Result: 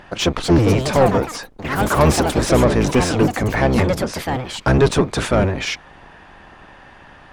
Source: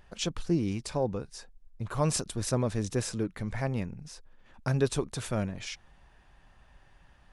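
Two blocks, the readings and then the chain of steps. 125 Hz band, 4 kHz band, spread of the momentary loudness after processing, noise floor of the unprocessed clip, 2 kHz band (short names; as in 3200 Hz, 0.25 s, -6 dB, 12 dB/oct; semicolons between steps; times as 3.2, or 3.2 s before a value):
+13.0 dB, +14.0 dB, 9 LU, -60 dBFS, +19.0 dB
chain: octaver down 1 oct, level +4 dB; overdrive pedal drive 23 dB, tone 1600 Hz, clips at -10.5 dBFS; echoes that change speed 0.289 s, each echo +5 st, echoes 3, each echo -6 dB; gain +7 dB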